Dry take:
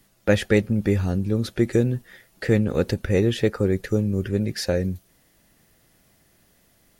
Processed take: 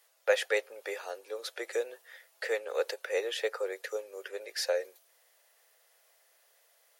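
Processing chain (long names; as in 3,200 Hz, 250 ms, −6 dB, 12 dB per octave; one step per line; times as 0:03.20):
Butterworth high-pass 470 Hz 48 dB per octave
level −4 dB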